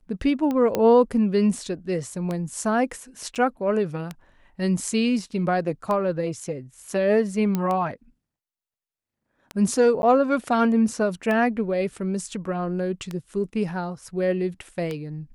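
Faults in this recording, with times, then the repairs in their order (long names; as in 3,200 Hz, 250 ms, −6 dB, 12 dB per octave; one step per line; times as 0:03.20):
scratch tick 33 1/3 rpm −16 dBFS
0:00.75: click −10 dBFS
0:03.35–0:03.36: drop-out 6.7 ms
0:07.55: click −12 dBFS
0:10.02–0:10.03: drop-out 11 ms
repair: click removal
repair the gap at 0:03.35, 6.7 ms
repair the gap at 0:10.02, 11 ms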